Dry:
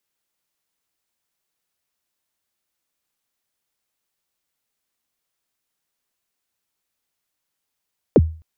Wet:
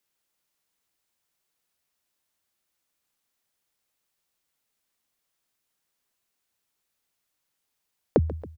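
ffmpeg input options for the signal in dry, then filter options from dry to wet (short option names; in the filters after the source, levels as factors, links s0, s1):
-f lavfi -i "aevalsrc='0.562*pow(10,-3*t/0.38)*sin(2*PI*(570*0.04/log(80/570)*(exp(log(80/570)*min(t,0.04)/0.04)-1)+80*max(t-0.04,0)))':d=0.26:s=44100"
-af "acompressor=threshold=0.126:ratio=6,aecho=1:1:138|276|414|552|690|828:0.15|0.0883|0.0521|0.0307|0.0181|0.0107"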